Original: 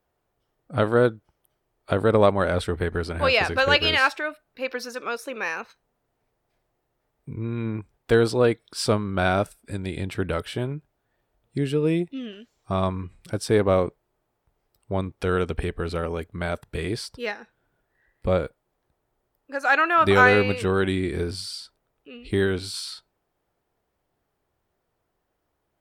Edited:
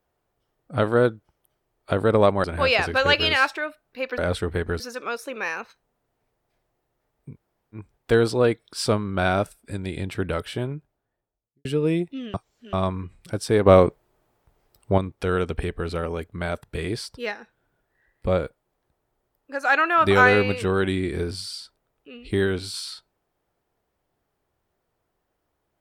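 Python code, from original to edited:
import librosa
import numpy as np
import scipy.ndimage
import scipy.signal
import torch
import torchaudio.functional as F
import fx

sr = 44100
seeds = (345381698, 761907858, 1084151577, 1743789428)

y = fx.studio_fade_out(x, sr, start_s=10.55, length_s=1.1)
y = fx.edit(y, sr, fx.move(start_s=2.44, length_s=0.62, to_s=4.8),
    fx.room_tone_fill(start_s=7.32, length_s=0.45, crossfade_s=0.1),
    fx.reverse_span(start_s=12.34, length_s=0.39),
    fx.clip_gain(start_s=13.66, length_s=1.32, db=7.0), tone=tone)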